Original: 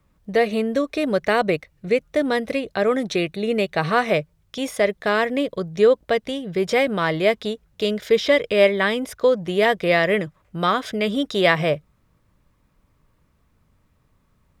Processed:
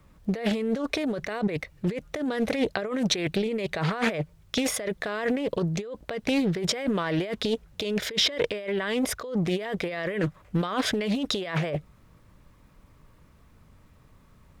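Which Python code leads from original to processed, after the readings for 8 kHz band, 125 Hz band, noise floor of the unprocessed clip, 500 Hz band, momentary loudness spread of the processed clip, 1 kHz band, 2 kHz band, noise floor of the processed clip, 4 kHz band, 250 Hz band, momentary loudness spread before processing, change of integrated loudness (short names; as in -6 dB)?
+5.0 dB, 0.0 dB, -64 dBFS, -10.5 dB, 6 LU, -10.5 dB, -9.0 dB, -57 dBFS, -1.5 dB, -2.5 dB, 7 LU, -7.0 dB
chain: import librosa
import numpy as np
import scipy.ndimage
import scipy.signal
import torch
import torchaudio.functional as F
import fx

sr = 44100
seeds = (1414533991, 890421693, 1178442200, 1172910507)

y = fx.over_compress(x, sr, threshold_db=-28.0, ratio=-1.0)
y = fx.doppler_dist(y, sr, depth_ms=0.43)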